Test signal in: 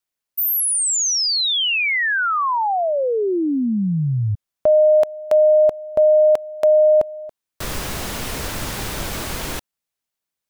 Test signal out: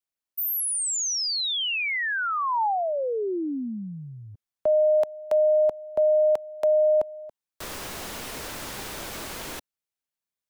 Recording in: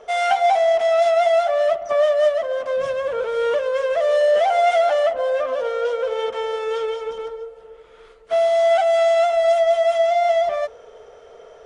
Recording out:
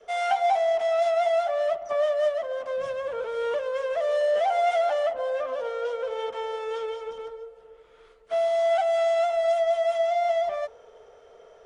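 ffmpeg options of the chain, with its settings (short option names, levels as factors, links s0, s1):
-filter_complex "[0:a]adynamicequalizer=threshold=0.0224:dfrequency=870:dqfactor=3.2:tfrequency=870:tqfactor=3.2:attack=5:release=100:ratio=0.375:range=2:mode=boostabove:tftype=bell,acrossover=split=230|650[s0][s1][s2];[s0]acompressor=threshold=0.01:ratio=6:release=33[s3];[s3][s1][s2]amix=inputs=3:normalize=0,volume=0.422"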